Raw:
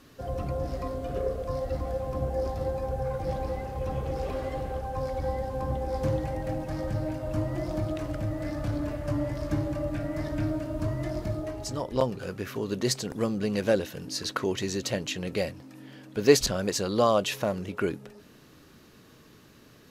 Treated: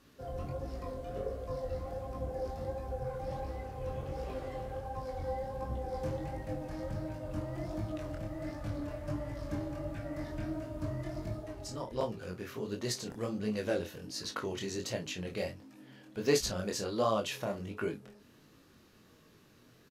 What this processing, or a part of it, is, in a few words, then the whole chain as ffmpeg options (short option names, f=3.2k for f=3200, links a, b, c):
double-tracked vocal: -filter_complex "[0:a]asplit=2[a][b];[b]adelay=33,volume=-10.5dB[c];[a][c]amix=inputs=2:normalize=0,flanger=delay=18:depth=7.4:speed=1.4,volume=-4.5dB"